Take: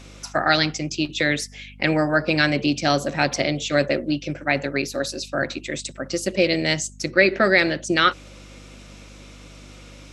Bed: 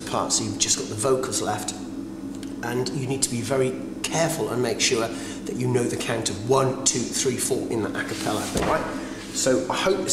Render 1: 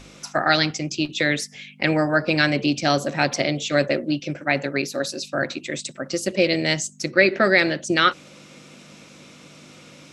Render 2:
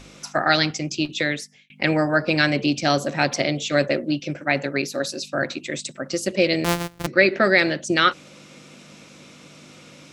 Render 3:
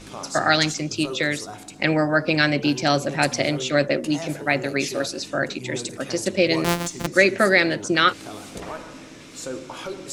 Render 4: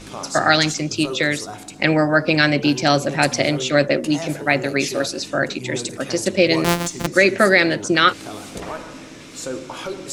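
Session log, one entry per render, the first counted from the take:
hum removal 50 Hz, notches 2
0:01.13–0:01.70: fade out; 0:06.64–0:07.07: samples sorted by size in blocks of 256 samples
mix in bed −11.5 dB
level +3.5 dB; brickwall limiter −1 dBFS, peak gain reduction 3 dB

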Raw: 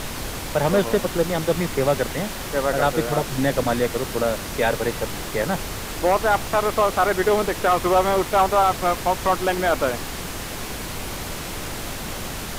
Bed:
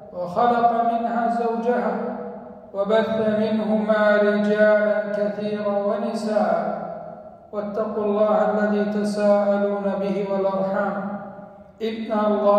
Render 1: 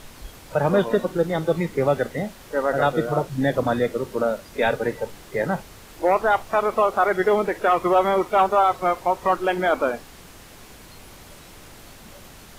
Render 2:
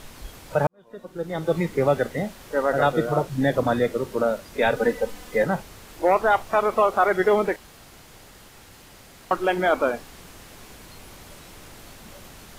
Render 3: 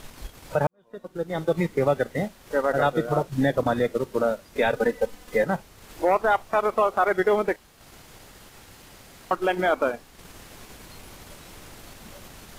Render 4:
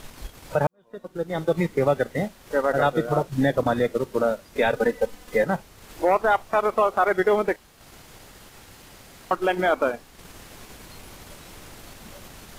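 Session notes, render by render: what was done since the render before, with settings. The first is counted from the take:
noise reduction from a noise print 14 dB
0:00.67–0:01.57: fade in quadratic; 0:04.76–0:05.44: comb filter 4 ms, depth 80%; 0:07.56–0:09.31: fill with room tone
transient designer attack +1 dB, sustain −7 dB; brickwall limiter −12 dBFS, peak gain reduction 3.5 dB
level +1 dB

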